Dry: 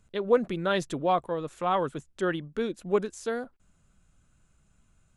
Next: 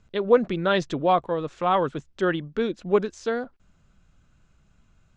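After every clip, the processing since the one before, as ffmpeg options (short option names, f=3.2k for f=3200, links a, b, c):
-af "lowpass=f=5.9k:w=0.5412,lowpass=f=5.9k:w=1.3066,volume=4.5dB"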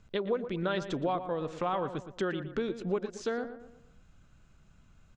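-filter_complex "[0:a]acompressor=threshold=-30dB:ratio=4,asplit=2[a][b];[b]adelay=117,lowpass=f=1.9k:p=1,volume=-10dB,asplit=2[c][d];[d]adelay=117,lowpass=f=1.9k:p=1,volume=0.44,asplit=2[e][f];[f]adelay=117,lowpass=f=1.9k:p=1,volume=0.44,asplit=2[g][h];[h]adelay=117,lowpass=f=1.9k:p=1,volume=0.44,asplit=2[i][j];[j]adelay=117,lowpass=f=1.9k:p=1,volume=0.44[k];[c][e][g][i][k]amix=inputs=5:normalize=0[l];[a][l]amix=inputs=2:normalize=0"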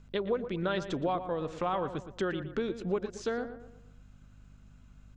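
-af "aeval=exprs='val(0)+0.002*(sin(2*PI*50*n/s)+sin(2*PI*2*50*n/s)/2+sin(2*PI*3*50*n/s)/3+sin(2*PI*4*50*n/s)/4+sin(2*PI*5*50*n/s)/5)':c=same"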